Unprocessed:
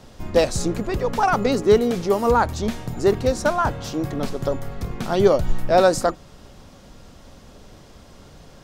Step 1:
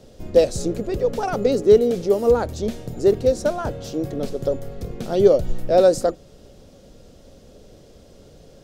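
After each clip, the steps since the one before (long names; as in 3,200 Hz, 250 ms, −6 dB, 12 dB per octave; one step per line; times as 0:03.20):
octave-band graphic EQ 500/1,000/2,000 Hz +9/−10/−4 dB
level −3 dB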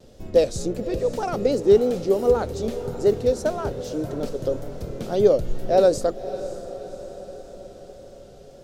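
tape wow and flutter 68 cents
feedback delay with all-pass diffusion 557 ms, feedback 59%, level −13.5 dB
level −2.5 dB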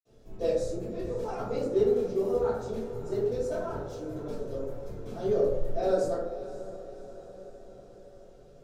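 convolution reverb RT60 0.95 s, pre-delay 48 ms
level −2.5 dB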